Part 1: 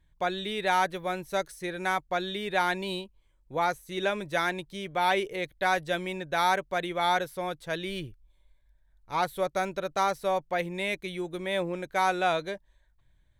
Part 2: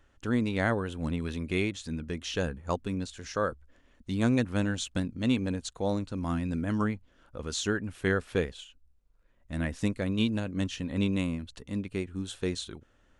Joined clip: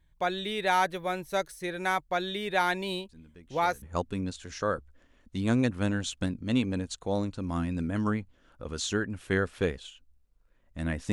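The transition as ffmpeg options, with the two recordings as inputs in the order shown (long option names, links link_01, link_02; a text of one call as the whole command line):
ffmpeg -i cue0.wav -i cue1.wav -filter_complex "[1:a]asplit=2[link_01][link_02];[0:a]apad=whole_dur=11.12,atrim=end=11.12,atrim=end=3.822[link_03];[link_02]atrim=start=2.558:end=9.86[link_04];[link_01]atrim=start=1.83:end=2.56,asetpts=PTS-STARTPTS,volume=-17.5dB,afade=type=in:duration=0.004:curve=hsin,afade=type=out:start_time=0.726:duration=0.004:curve=hsin,adelay=136269S[link_05];[link_03][link_04]acrossfade=duration=0.004:curve1=hsin:curve2=hsin[link_06];[link_06][link_05]amix=inputs=2:normalize=0" out.wav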